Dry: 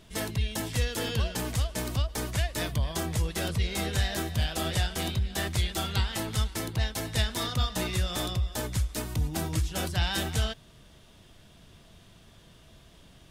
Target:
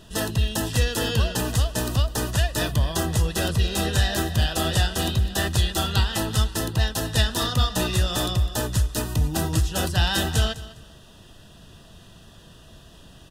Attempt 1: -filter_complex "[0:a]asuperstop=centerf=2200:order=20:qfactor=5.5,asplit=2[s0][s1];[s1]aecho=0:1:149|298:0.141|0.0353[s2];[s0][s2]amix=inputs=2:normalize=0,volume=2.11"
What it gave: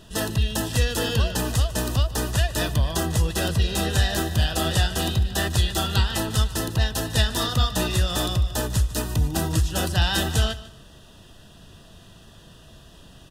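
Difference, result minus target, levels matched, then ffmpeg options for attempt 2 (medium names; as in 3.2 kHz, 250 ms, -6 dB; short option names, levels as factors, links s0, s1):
echo 55 ms early
-filter_complex "[0:a]asuperstop=centerf=2200:order=20:qfactor=5.5,asplit=2[s0][s1];[s1]aecho=0:1:204|408:0.141|0.0353[s2];[s0][s2]amix=inputs=2:normalize=0,volume=2.11"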